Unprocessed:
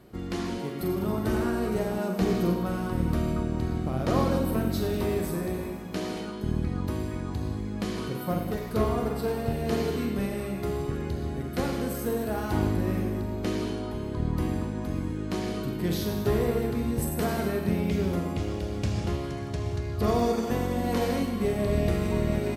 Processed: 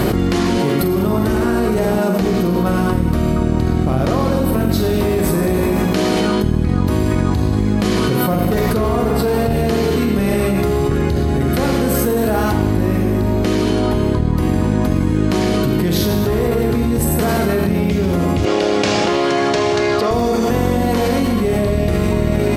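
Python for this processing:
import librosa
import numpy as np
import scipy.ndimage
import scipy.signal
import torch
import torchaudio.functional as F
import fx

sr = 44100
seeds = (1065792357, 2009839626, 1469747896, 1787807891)

y = fx.bandpass_edges(x, sr, low_hz=380.0, high_hz=6400.0, at=(18.45, 20.11))
y = fx.env_flatten(y, sr, amount_pct=100)
y = y * librosa.db_to_amplitude(5.0)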